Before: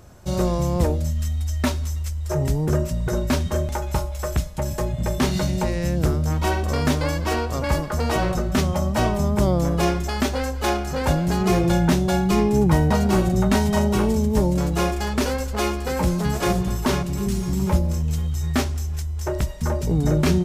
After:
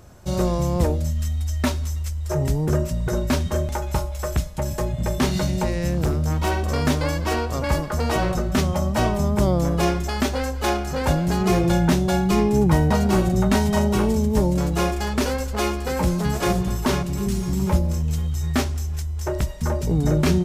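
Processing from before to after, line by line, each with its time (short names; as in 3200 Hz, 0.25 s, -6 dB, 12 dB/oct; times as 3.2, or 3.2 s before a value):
5.88–6.74 overloaded stage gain 16 dB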